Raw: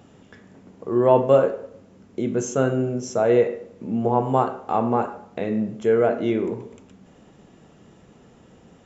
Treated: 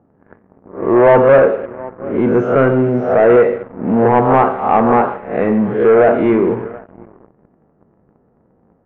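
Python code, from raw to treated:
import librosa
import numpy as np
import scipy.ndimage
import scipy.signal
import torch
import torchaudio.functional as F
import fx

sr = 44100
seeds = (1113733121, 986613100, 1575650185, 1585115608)

y = fx.spec_swells(x, sr, rise_s=0.56)
y = y + 10.0 ** (-23.5 / 20.0) * np.pad(y, (int(726 * sr / 1000.0), 0))[:len(y)]
y = fx.leveller(y, sr, passes=3)
y = scipy.signal.sosfilt(scipy.signal.butter(4, 2100.0, 'lowpass', fs=sr, output='sos'), y)
y = fx.low_shelf(y, sr, hz=370.0, db=-3.5)
y = fx.env_lowpass(y, sr, base_hz=950.0, full_db=-9.5)
y = y * 10.0 ** (1.0 / 20.0)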